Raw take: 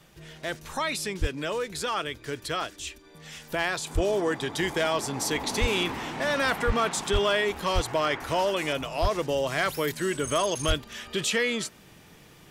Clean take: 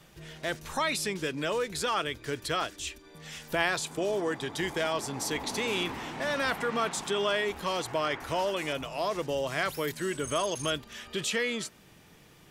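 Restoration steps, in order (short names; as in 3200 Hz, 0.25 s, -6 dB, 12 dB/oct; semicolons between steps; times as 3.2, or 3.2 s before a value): clip repair -16 dBFS; de-plosive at 1.2/3.94/5.6/6.66/7.12/7.74/9.01/10.67; gain correction -4 dB, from 3.87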